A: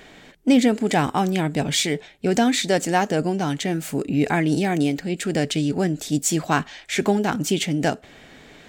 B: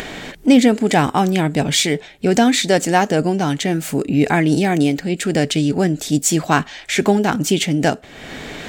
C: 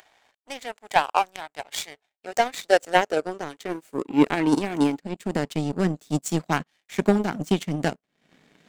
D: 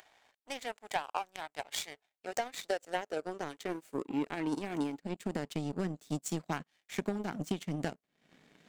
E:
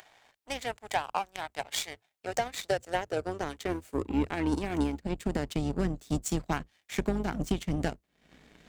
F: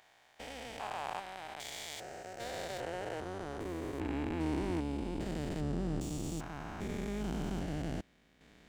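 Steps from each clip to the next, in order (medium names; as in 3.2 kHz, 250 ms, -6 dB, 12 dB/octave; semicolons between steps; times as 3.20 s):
upward compressor, threshold -25 dBFS; trim +5 dB
high-pass sweep 790 Hz -> 170 Hz, 1.85–5.66 s; power-law waveshaper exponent 2; trim -3 dB
compression 6:1, threshold -26 dBFS, peak gain reduction 14.5 dB; trim -4.5 dB
octave divider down 2 oct, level -4 dB; saturation -17 dBFS, distortion -27 dB; trim +5 dB
spectrogram pixelated in time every 400 ms; trim -1.5 dB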